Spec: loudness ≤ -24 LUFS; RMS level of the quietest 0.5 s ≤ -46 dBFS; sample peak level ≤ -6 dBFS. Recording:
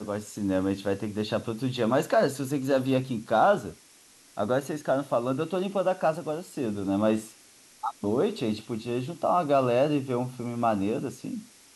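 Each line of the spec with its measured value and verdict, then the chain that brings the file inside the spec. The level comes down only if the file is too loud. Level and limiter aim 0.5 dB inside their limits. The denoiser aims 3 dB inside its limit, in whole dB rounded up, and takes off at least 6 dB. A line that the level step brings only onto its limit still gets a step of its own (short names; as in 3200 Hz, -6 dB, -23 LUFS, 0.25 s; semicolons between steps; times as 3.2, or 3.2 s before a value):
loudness -27.5 LUFS: OK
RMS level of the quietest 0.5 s -56 dBFS: OK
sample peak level -11.0 dBFS: OK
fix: none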